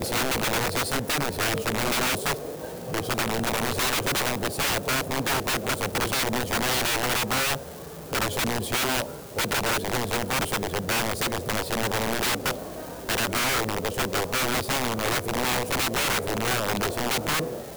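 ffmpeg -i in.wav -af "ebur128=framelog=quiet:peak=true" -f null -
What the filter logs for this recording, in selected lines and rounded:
Integrated loudness:
  I:         -25.4 LUFS
  Threshold: -35.5 LUFS
Loudness range:
  LRA:         1.5 LU
  Threshold: -45.6 LUFS
  LRA low:   -26.3 LUFS
  LRA high:  -24.8 LUFS
True peak:
  Peak:      -13.7 dBFS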